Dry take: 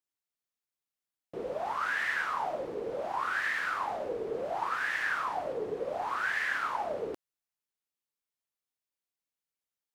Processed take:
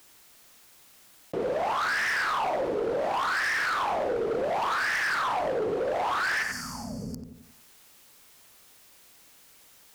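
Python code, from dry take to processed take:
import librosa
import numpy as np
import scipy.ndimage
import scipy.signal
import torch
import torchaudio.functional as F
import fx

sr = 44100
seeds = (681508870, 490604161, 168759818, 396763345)

y = fx.spec_box(x, sr, start_s=6.43, length_s=0.75, low_hz=260.0, high_hz=4400.0, gain_db=-27)
y = fx.echo_filtered(y, sr, ms=91, feedback_pct=30, hz=1500.0, wet_db=-8.5)
y = np.clip(y, -10.0 ** (-32.0 / 20.0), 10.0 ** (-32.0 / 20.0))
y = fx.env_flatten(y, sr, amount_pct=50)
y = y * librosa.db_to_amplitude(7.0)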